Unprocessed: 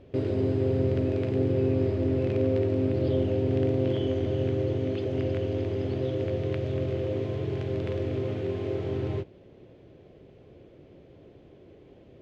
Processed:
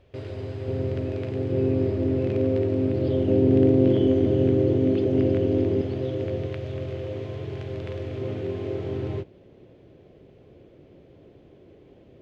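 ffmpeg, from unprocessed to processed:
-af "asetnsamples=n=441:p=0,asendcmd='0.68 equalizer g -3.5;1.52 equalizer g 3;3.28 equalizer g 10.5;5.81 equalizer g 1.5;6.46 equalizer g -5;8.21 equalizer g 1',equalizer=f=250:t=o:w=2:g=-13"

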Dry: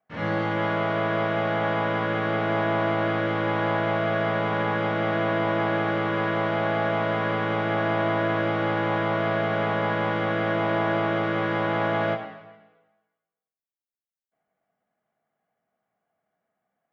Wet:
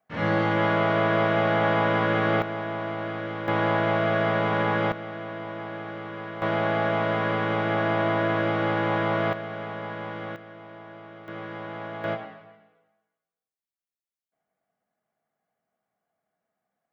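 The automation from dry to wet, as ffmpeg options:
-af "asetnsamples=n=441:p=0,asendcmd='2.42 volume volume -7dB;3.48 volume volume 1dB;4.92 volume volume -11dB;6.42 volume volume 0dB;9.33 volume volume -9.5dB;10.36 volume volume -20dB;11.28 volume volume -11.5dB;12.04 volume volume -3dB',volume=1.33"

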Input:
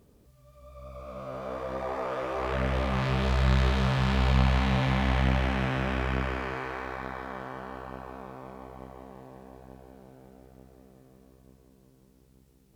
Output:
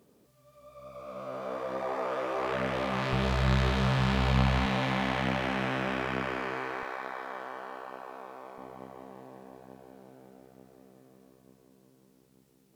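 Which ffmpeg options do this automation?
-af "asetnsamples=n=441:p=0,asendcmd='3.13 highpass f 79;4.66 highpass f 190;6.83 highpass f 410;8.58 highpass f 170',highpass=190"

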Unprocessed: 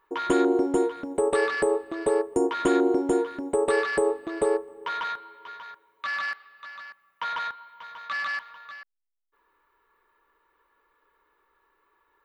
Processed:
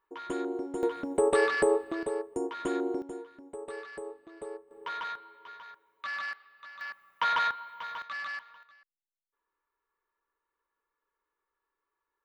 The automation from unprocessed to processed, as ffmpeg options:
-af "asetnsamples=n=441:p=0,asendcmd='0.83 volume volume -1dB;2.03 volume volume -9.5dB;3.02 volume volume -17.5dB;4.71 volume volume -6dB;6.81 volume volume 3.5dB;8.02 volume volume -7.5dB;8.63 volume volume -17.5dB',volume=0.251"

